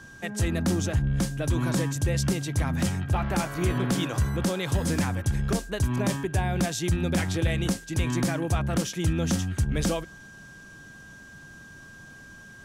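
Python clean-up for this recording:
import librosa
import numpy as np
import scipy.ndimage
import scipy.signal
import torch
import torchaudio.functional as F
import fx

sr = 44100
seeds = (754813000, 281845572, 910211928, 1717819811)

y = fx.notch(x, sr, hz=1600.0, q=30.0)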